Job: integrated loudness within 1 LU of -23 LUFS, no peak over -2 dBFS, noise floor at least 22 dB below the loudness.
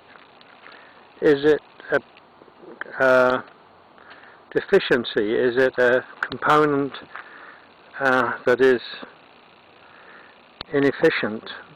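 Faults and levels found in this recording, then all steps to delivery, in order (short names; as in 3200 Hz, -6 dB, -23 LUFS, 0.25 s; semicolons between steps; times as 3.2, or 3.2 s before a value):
clipped 0.9%; flat tops at -9.0 dBFS; loudness -20.5 LUFS; peak -9.0 dBFS; loudness target -23.0 LUFS
-> clip repair -9 dBFS; gain -2.5 dB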